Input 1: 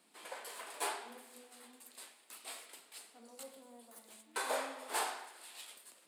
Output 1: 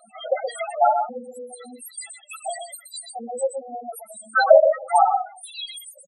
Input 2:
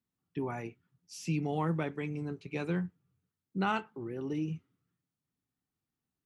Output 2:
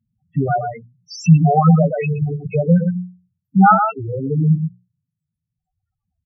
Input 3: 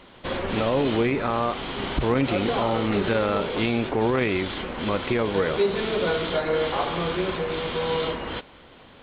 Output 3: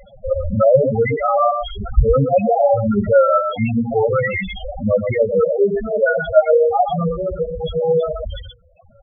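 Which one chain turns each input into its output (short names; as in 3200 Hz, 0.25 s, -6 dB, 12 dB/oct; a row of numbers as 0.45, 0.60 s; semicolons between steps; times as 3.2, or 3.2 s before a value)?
reverb removal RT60 1.6 s; notches 60/120/180/240/300/360/420/480 Hz; comb 1.5 ms, depth 83%; on a send: echo 0.123 s -6.5 dB; on the sum: loudest bins only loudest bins 4; normalise peaks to -1.5 dBFS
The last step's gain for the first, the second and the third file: +26.5, +21.5, +11.5 dB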